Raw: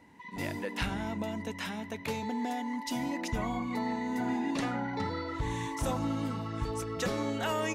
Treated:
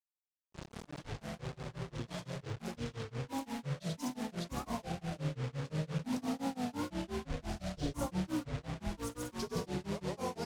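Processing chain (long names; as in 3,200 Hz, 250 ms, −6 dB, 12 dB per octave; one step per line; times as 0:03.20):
fade in at the beginning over 1.71 s
flat-topped bell 2,500 Hz −11.5 dB
wrong playback speed 45 rpm record played at 33 rpm
high-pass filter 43 Hz 6 dB per octave
repeating echo 93 ms, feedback 47%, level −5 dB
on a send at −9 dB: convolution reverb RT60 1.5 s, pre-delay 5 ms
on the sum: dynamic equaliser 270 Hz, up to −8 dB, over −53 dBFS, Q 5.3
in parallel at −1 dB: downward compressor 6 to 1, threshold −41 dBFS, peak gain reduction 15 dB
on the sum: bit-depth reduction 6 bits, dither none
Bessel low-pass filter 8,900 Hz, order 2
granular cloud 187 ms, grains 5.8 per second, pitch spread up and down by 7 semitones
wow of a warped record 33 1/3 rpm, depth 100 cents
level −5.5 dB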